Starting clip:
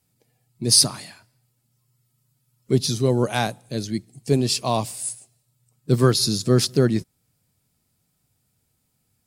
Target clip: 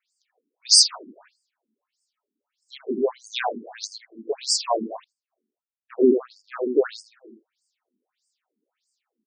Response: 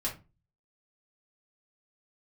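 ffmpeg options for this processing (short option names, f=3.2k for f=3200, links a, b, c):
-filter_complex "[0:a]asplit=2[a][b];[b]adelay=81,lowpass=f=2.4k:p=1,volume=-5dB,asplit=2[c][d];[d]adelay=81,lowpass=f=2.4k:p=1,volume=0.49,asplit=2[e][f];[f]adelay=81,lowpass=f=2.4k:p=1,volume=0.49,asplit=2[g][h];[h]adelay=81,lowpass=f=2.4k:p=1,volume=0.49,asplit=2[i][j];[j]adelay=81,lowpass=f=2.4k:p=1,volume=0.49,asplit=2[k][l];[l]adelay=81,lowpass=f=2.4k:p=1,volume=0.49[m];[a][c][e][g][i][k][m]amix=inputs=7:normalize=0,asettb=1/sr,asplit=3[n][o][p];[n]atrim=end=5.044[q];[o]atrim=start=5.04:end=6.64,asetpts=PTS-STARTPTS,afade=t=in:d=0.004:c=qsin,afade=t=out:st=1.596:d=0.004:c=qsin,adynamicsmooth=sensitivity=0.5:basefreq=540[r];[p]atrim=start=6.636[s];[q][r]acrossfade=d=0.004:c1=hsin:c2=qsin[t];[t][s]acrossfade=d=0.004:c1=qsin:c2=hsin,afftfilt=real='re*between(b*sr/1024,290*pow(6600/290,0.5+0.5*sin(2*PI*1.6*pts/sr))/1.41,290*pow(6600/290,0.5+0.5*sin(2*PI*1.6*pts/sr))*1.41)':imag='im*between(b*sr/1024,290*pow(6600/290,0.5+0.5*sin(2*PI*1.6*pts/sr))/1.41,290*pow(6600/290,0.5+0.5*sin(2*PI*1.6*pts/sr))*1.41)':win_size=1024:overlap=0.75,volume=3.5dB"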